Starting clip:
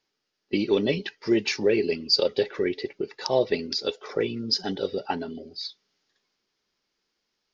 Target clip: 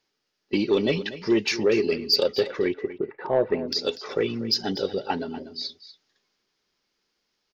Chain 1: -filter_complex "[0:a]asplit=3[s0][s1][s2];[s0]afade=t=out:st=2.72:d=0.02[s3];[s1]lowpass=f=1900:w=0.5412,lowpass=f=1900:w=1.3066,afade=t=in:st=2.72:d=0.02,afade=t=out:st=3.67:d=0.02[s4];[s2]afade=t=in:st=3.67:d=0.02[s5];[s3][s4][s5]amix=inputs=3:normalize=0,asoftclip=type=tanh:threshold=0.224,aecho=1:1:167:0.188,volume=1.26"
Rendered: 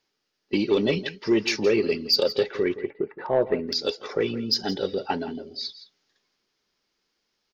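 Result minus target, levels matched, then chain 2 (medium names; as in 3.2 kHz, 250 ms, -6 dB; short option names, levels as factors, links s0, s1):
echo 75 ms early
-filter_complex "[0:a]asplit=3[s0][s1][s2];[s0]afade=t=out:st=2.72:d=0.02[s3];[s1]lowpass=f=1900:w=0.5412,lowpass=f=1900:w=1.3066,afade=t=in:st=2.72:d=0.02,afade=t=out:st=3.67:d=0.02[s4];[s2]afade=t=in:st=3.67:d=0.02[s5];[s3][s4][s5]amix=inputs=3:normalize=0,asoftclip=type=tanh:threshold=0.224,aecho=1:1:242:0.188,volume=1.26"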